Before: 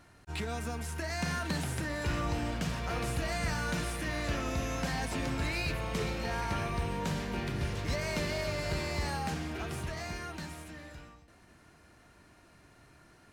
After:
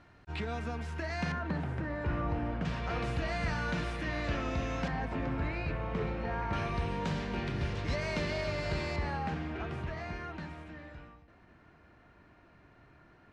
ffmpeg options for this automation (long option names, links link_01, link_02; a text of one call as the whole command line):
ffmpeg -i in.wav -af "asetnsamples=nb_out_samples=441:pad=0,asendcmd='1.32 lowpass f 1600;2.65 lowpass f 3700;4.88 lowpass f 1800;6.53 lowpass f 4500;8.96 lowpass f 2500',lowpass=3500" out.wav